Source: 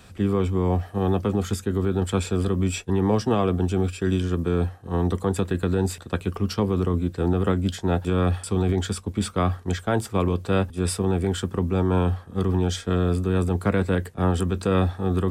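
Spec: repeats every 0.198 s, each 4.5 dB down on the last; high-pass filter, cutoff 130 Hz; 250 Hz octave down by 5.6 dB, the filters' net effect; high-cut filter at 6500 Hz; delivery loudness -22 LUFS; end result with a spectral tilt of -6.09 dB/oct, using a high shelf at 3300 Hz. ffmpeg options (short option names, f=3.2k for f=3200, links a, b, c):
-af "highpass=130,lowpass=6.5k,equalizer=f=250:t=o:g=-7.5,highshelf=f=3.3k:g=-4.5,aecho=1:1:198|396|594|792|990|1188|1386|1584|1782:0.596|0.357|0.214|0.129|0.0772|0.0463|0.0278|0.0167|0.01,volume=5dB"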